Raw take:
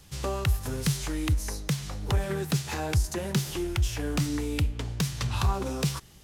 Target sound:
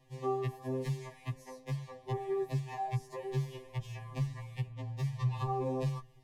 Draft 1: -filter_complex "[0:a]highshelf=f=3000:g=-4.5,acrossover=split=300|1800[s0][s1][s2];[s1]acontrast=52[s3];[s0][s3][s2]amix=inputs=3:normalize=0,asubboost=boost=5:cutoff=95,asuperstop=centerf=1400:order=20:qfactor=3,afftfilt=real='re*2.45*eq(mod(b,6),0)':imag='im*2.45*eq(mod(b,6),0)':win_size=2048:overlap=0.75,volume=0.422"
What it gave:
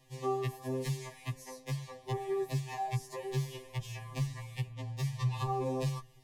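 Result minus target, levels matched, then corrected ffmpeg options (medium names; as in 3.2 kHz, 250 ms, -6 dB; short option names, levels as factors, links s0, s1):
8 kHz band +8.0 dB
-filter_complex "[0:a]highshelf=f=3000:g=-14.5,acrossover=split=300|1800[s0][s1][s2];[s1]acontrast=52[s3];[s0][s3][s2]amix=inputs=3:normalize=0,asubboost=boost=5:cutoff=95,asuperstop=centerf=1400:order=20:qfactor=3,afftfilt=real='re*2.45*eq(mod(b,6),0)':imag='im*2.45*eq(mod(b,6),0)':win_size=2048:overlap=0.75,volume=0.422"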